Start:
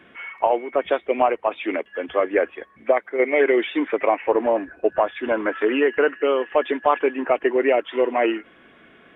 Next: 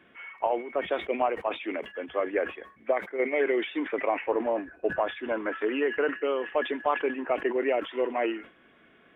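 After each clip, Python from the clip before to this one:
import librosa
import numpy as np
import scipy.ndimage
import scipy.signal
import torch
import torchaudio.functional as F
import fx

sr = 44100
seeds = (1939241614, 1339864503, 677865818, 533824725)

y = fx.sustainer(x, sr, db_per_s=150.0)
y = y * librosa.db_to_amplitude(-8.0)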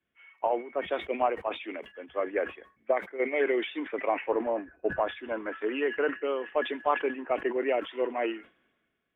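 y = fx.band_widen(x, sr, depth_pct=70)
y = y * librosa.db_to_amplitude(-1.5)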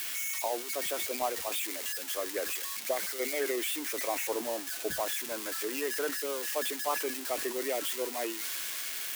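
y = x + 0.5 * 10.0 ** (-18.0 / 20.0) * np.diff(np.sign(x), prepend=np.sign(x[:1]))
y = y * librosa.db_to_amplitude(-6.0)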